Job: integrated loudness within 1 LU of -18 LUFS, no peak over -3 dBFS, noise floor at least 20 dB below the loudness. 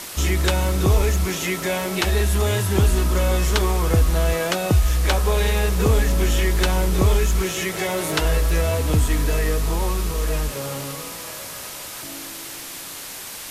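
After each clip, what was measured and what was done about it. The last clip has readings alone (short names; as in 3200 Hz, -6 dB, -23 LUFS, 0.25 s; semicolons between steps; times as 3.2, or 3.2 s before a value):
noise floor -35 dBFS; noise floor target -42 dBFS; loudness -21.5 LUFS; peak -7.5 dBFS; loudness target -18.0 LUFS
-> denoiser 7 dB, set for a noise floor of -35 dBFS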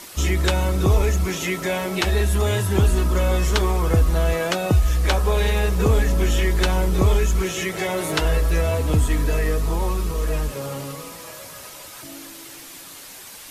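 noise floor -40 dBFS; noise floor target -41 dBFS
-> denoiser 6 dB, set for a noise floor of -40 dBFS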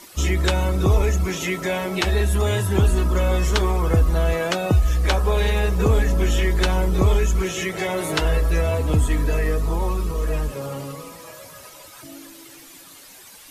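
noise floor -45 dBFS; loudness -21.5 LUFS; peak -8.0 dBFS; loudness target -18.0 LUFS
-> gain +3.5 dB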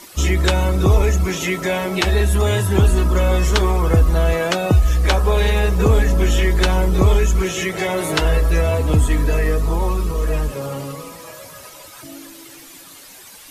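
loudness -18.0 LUFS; peak -4.5 dBFS; noise floor -41 dBFS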